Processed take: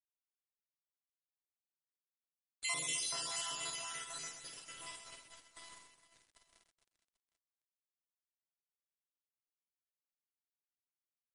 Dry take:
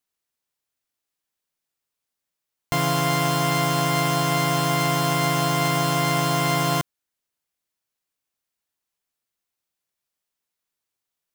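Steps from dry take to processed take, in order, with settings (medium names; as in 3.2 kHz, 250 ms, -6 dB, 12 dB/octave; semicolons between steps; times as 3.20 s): random holes in the spectrogram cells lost 68%; Doppler pass-by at 2.45 s, 16 m/s, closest 10 m; gate -37 dBFS, range -11 dB; differentiator; small samples zeroed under -48.5 dBFS; treble shelf 5 kHz -2 dB; reverse bouncing-ball echo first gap 50 ms, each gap 1.6×, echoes 5; trim +2 dB; MP3 40 kbps 32 kHz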